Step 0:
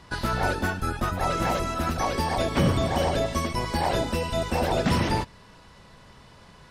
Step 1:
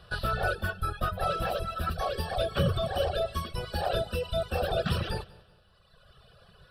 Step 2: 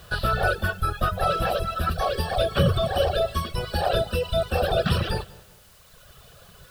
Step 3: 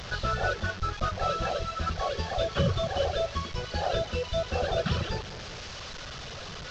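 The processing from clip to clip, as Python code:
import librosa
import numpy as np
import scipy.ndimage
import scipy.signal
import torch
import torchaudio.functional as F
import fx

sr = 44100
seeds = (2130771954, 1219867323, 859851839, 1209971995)

y1 = fx.fixed_phaser(x, sr, hz=1400.0, stages=8)
y1 = fx.echo_feedback(y1, sr, ms=190, feedback_pct=37, wet_db=-13.0)
y1 = fx.dereverb_blind(y1, sr, rt60_s=1.6)
y2 = fx.dmg_noise_colour(y1, sr, seeds[0], colour='white', level_db=-62.0)
y2 = y2 * librosa.db_to_amplitude(6.0)
y3 = fx.delta_mod(y2, sr, bps=32000, step_db=-28.0)
y3 = y3 * librosa.db_to_amplitude(-5.5)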